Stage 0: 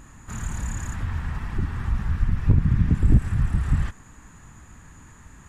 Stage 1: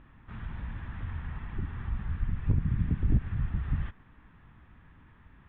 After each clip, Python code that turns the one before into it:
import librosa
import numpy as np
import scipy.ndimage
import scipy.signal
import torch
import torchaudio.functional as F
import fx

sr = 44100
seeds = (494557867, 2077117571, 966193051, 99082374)

y = scipy.signal.sosfilt(scipy.signal.cheby1(5, 1.0, 3500.0, 'lowpass', fs=sr, output='sos'), x)
y = y * librosa.db_to_amplitude(-8.5)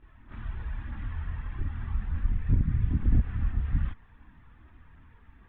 y = fx.chorus_voices(x, sr, voices=4, hz=0.4, base_ms=27, depth_ms=2.4, mix_pct=70)
y = y * librosa.db_to_amplitude(2.0)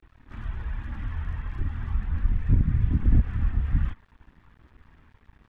y = np.sign(x) * np.maximum(np.abs(x) - 10.0 ** (-56.5 / 20.0), 0.0)
y = y * librosa.db_to_amplitude(3.5)